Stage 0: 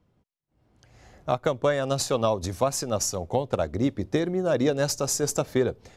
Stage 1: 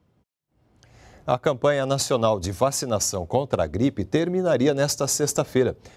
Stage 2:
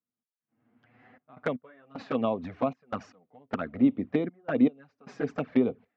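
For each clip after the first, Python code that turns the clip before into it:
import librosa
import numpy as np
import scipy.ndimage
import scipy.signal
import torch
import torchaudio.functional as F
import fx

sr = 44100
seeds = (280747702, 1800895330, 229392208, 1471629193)

y1 = scipy.signal.sosfilt(scipy.signal.butter(2, 42.0, 'highpass', fs=sr, output='sos'), x)
y1 = y1 * librosa.db_to_amplitude(3.0)
y2 = fx.step_gate(y1, sr, bpm=77, pattern='..xxxx.x', floor_db=-24.0, edge_ms=4.5)
y2 = fx.cabinet(y2, sr, low_hz=240.0, low_slope=12, high_hz=2400.0, hz=(250.0, 360.0, 570.0, 910.0), db=(8, -9, -8, -6))
y2 = fx.env_flanger(y2, sr, rest_ms=8.8, full_db=-21.5)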